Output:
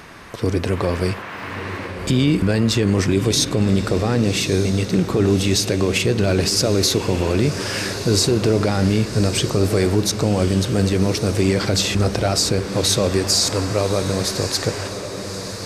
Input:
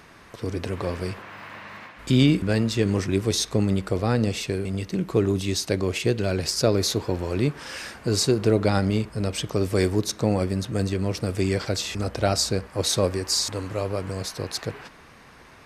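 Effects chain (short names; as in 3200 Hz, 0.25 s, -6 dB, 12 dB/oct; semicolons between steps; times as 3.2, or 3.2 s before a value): limiter -17 dBFS, peak gain reduction 10 dB; diffused feedback echo 1.177 s, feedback 55%, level -10 dB; gain +9 dB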